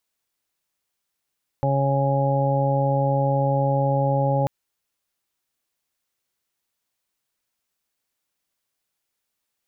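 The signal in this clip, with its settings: steady additive tone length 2.84 s, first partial 138 Hz, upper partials -9/-14/-2/-15/-4 dB, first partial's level -21 dB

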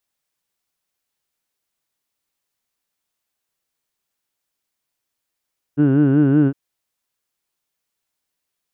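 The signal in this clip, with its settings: formant vowel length 0.76 s, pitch 140 Hz, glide +0.5 st, vibrato depth 1.1 st, F1 320 Hz, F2 1.5 kHz, F3 2.8 kHz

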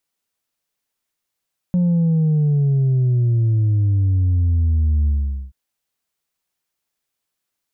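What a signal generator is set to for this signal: sub drop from 180 Hz, over 3.78 s, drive 2 dB, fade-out 0.45 s, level -14 dB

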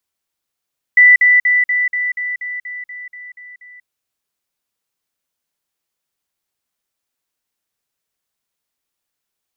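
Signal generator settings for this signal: level ladder 1.98 kHz -4 dBFS, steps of -3 dB, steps 12, 0.19 s 0.05 s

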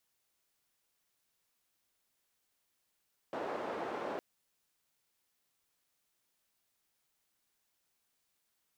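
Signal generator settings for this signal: noise band 370–640 Hz, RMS -39 dBFS 0.86 s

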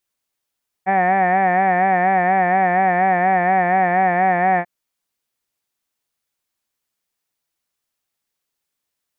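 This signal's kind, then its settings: formant vowel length 3.79 s, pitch 187 Hz, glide -0.5 st, vibrato 4.2 Hz, vibrato depth 0.75 st, F1 750 Hz, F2 1.8 kHz, F3 2.3 kHz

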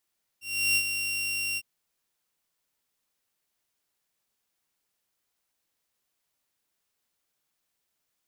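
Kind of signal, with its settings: ADSR saw 2.75 kHz, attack 348 ms, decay 67 ms, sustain -7.5 dB, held 1.16 s, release 47 ms -18 dBFS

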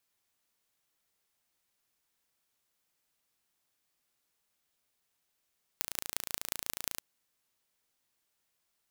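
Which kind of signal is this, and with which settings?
pulse train 28.1 per s, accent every 5, -3.5 dBFS 1.20 s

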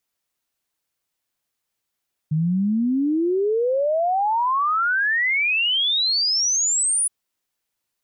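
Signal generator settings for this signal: log sweep 150 Hz -> 10 kHz 4.77 s -17.5 dBFS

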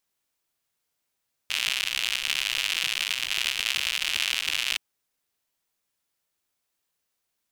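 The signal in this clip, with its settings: rain from filtered ticks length 3.27 s, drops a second 130, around 2.8 kHz, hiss -28 dB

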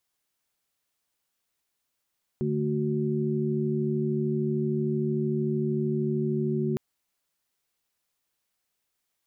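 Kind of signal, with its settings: chord D3/A3/F#4 sine, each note -28.5 dBFS 4.36 s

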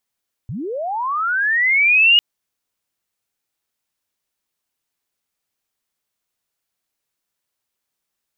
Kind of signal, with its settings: sweep linear 95 Hz -> 2.9 kHz -24.5 dBFS -> -8 dBFS 1.70 s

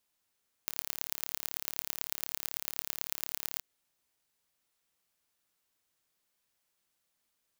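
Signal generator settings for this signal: pulse train 36 per s, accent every 4, -4.5 dBFS 2.93 s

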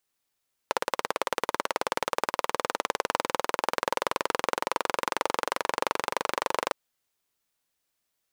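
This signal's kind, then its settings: single-cylinder engine model, changing speed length 6.01 s, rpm 2100, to 2900, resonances 540/920 Hz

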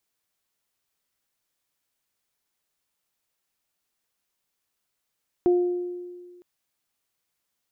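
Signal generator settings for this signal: additive tone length 0.96 s, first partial 355 Hz, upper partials -15 dB, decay 1.74 s, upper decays 0.89 s, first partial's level -15 dB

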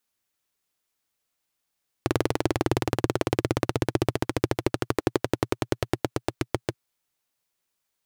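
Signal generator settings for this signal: single-cylinder engine model, changing speed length 4.68 s, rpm 2500, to 800, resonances 120/330 Hz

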